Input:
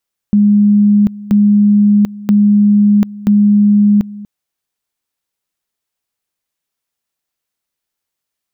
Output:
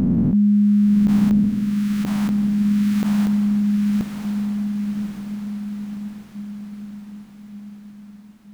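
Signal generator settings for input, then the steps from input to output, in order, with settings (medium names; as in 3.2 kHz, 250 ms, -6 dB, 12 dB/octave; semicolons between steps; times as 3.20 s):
two-level tone 206 Hz -5.5 dBFS, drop 19.5 dB, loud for 0.74 s, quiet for 0.24 s, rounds 4
reverse spectral sustain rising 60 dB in 2.59 s; peak limiter -11.5 dBFS; on a send: echo that smears into a reverb 1128 ms, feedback 54%, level -5 dB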